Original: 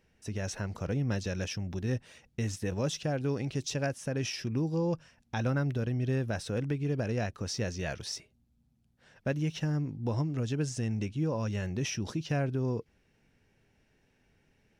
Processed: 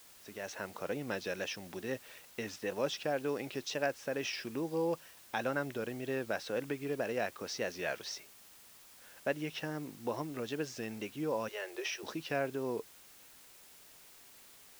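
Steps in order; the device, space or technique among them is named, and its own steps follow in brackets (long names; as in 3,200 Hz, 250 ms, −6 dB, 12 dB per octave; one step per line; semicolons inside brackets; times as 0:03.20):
0:11.48–0:12.03: Chebyshev high-pass filter 340 Hz, order 8
dictaphone (band-pass filter 390–4,200 Hz; automatic gain control gain up to 6 dB; tape wow and flutter; white noise bed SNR 19 dB)
level −4.5 dB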